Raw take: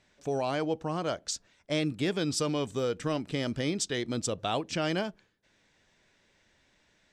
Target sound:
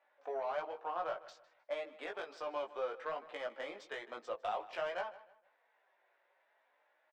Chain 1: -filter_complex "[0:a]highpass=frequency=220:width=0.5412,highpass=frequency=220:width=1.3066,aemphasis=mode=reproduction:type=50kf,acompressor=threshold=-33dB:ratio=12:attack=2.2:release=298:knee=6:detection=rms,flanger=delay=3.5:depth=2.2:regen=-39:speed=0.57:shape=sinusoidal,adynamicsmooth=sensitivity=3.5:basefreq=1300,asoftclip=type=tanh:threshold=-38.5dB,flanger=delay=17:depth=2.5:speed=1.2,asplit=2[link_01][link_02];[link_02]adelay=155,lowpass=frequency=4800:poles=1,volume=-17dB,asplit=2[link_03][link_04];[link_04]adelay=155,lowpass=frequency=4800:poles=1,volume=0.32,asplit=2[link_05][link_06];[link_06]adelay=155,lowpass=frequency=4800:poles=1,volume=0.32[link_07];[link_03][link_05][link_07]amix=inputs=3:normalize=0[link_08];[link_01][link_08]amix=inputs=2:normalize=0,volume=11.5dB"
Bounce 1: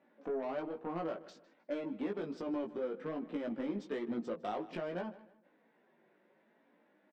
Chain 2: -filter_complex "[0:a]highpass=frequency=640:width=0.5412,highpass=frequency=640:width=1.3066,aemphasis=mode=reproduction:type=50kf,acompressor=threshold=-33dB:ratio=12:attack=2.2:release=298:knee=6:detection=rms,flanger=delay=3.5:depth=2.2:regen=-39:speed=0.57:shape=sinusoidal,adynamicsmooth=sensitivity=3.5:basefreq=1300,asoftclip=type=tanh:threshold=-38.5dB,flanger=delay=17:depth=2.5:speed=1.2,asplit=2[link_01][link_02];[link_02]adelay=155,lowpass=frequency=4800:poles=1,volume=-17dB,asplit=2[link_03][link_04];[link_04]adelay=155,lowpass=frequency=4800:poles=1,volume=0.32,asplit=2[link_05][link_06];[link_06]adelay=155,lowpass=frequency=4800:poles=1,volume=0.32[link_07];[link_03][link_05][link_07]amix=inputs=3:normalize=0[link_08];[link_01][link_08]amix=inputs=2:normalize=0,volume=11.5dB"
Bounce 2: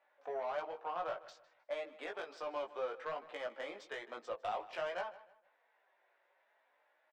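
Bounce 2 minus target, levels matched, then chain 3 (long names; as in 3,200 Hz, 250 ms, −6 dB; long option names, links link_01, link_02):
soft clipping: distortion +10 dB
-filter_complex "[0:a]highpass=frequency=640:width=0.5412,highpass=frequency=640:width=1.3066,aemphasis=mode=reproduction:type=50kf,acompressor=threshold=-33dB:ratio=12:attack=2.2:release=298:knee=6:detection=rms,flanger=delay=3.5:depth=2.2:regen=-39:speed=0.57:shape=sinusoidal,adynamicsmooth=sensitivity=3.5:basefreq=1300,asoftclip=type=tanh:threshold=-32.5dB,flanger=delay=17:depth=2.5:speed=1.2,asplit=2[link_01][link_02];[link_02]adelay=155,lowpass=frequency=4800:poles=1,volume=-17dB,asplit=2[link_03][link_04];[link_04]adelay=155,lowpass=frequency=4800:poles=1,volume=0.32,asplit=2[link_05][link_06];[link_06]adelay=155,lowpass=frequency=4800:poles=1,volume=0.32[link_07];[link_03][link_05][link_07]amix=inputs=3:normalize=0[link_08];[link_01][link_08]amix=inputs=2:normalize=0,volume=11.5dB"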